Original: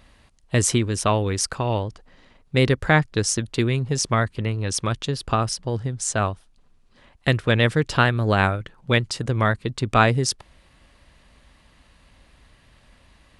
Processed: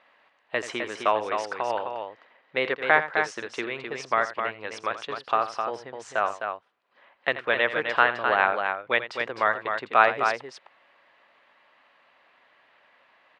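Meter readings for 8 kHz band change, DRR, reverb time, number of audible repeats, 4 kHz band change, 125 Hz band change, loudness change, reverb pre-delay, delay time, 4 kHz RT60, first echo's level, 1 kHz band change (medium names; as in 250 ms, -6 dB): -20.5 dB, no reverb, no reverb, 2, -7.5 dB, -28.5 dB, -3.5 dB, no reverb, 83 ms, no reverb, -13.0 dB, +1.0 dB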